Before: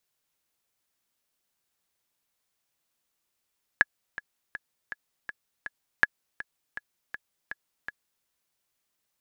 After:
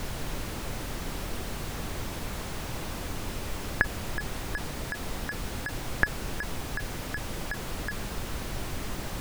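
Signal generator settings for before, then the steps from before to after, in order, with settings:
click track 162 BPM, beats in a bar 6, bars 2, 1,690 Hz, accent 17 dB −5 dBFS
converter with a step at zero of −25 dBFS
spectral tilt −4 dB per octave

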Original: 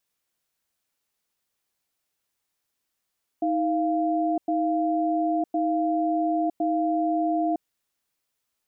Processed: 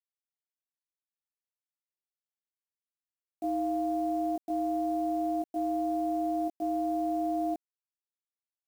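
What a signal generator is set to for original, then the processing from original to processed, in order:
tone pair in a cadence 316 Hz, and 694 Hz, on 0.96 s, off 0.10 s, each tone −24 dBFS 4.19 s
output level in coarse steps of 12 dB
bit reduction 9 bits

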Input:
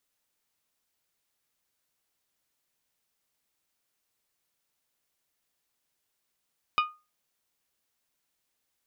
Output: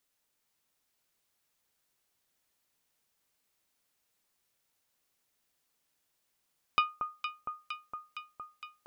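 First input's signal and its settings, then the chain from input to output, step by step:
struck glass bell, lowest mode 1,230 Hz, decay 0.28 s, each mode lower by 5 dB, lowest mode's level −18.5 dB
on a send: delay that swaps between a low-pass and a high-pass 231 ms, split 1,300 Hz, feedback 83%, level −5.5 dB

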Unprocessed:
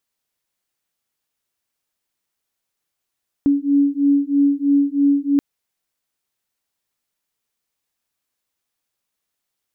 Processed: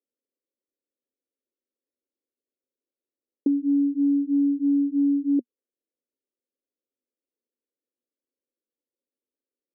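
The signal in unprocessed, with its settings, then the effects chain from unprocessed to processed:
two tones that beat 281 Hz, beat 3.1 Hz, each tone −16.5 dBFS 1.93 s
elliptic band-pass filter 240–550 Hz
downward compressor, threshold −19 dBFS

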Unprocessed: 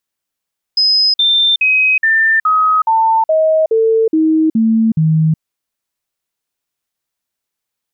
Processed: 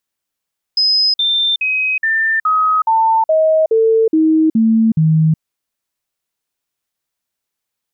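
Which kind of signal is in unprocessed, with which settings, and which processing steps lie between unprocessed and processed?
stepped sweep 5,060 Hz down, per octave 2, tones 11, 0.37 s, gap 0.05 s −8.5 dBFS
dynamic equaliser 2,500 Hz, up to −5 dB, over −27 dBFS, Q 0.89

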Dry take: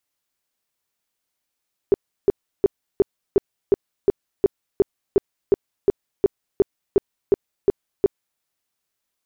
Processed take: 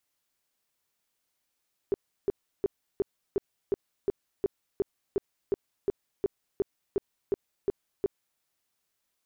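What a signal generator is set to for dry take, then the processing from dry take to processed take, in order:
tone bursts 398 Hz, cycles 8, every 0.36 s, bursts 18, −10 dBFS
brickwall limiter −21.5 dBFS

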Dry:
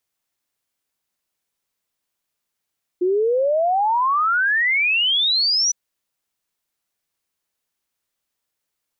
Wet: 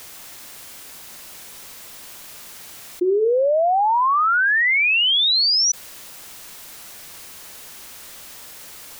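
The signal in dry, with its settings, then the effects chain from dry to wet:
exponential sine sweep 350 Hz → 6,000 Hz 2.71 s −15.5 dBFS
mains-hum notches 60/120/180/240/300/360/420 Hz
envelope flattener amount 70%

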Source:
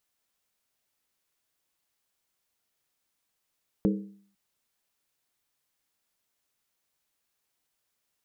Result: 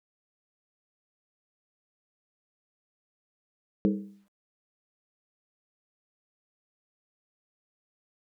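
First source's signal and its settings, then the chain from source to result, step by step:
struck skin length 0.50 s, lowest mode 199 Hz, decay 0.55 s, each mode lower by 4 dB, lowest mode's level −19.5 dB
low-pass filter 1,600 Hz 6 dB per octave
downward expander −55 dBFS
bit-depth reduction 12 bits, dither none

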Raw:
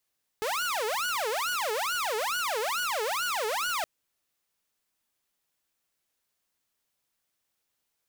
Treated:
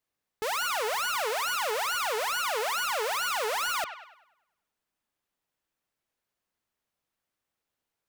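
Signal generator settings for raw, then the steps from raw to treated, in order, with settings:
siren wail 423–1,470 Hz 2.3 per second saw −25 dBFS 3.42 s
delay with a band-pass on its return 100 ms, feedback 47%, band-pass 1,600 Hz, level −9 dB
one half of a high-frequency compander decoder only

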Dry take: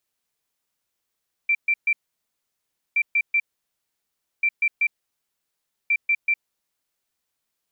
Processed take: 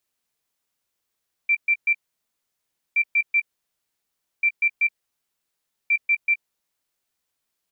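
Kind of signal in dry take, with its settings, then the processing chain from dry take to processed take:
beeps in groups sine 2,350 Hz, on 0.06 s, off 0.13 s, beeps 3, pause 1.03 s, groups 4, −16.5 dBFS
double-tracking delay 17 ms −13.5 dB

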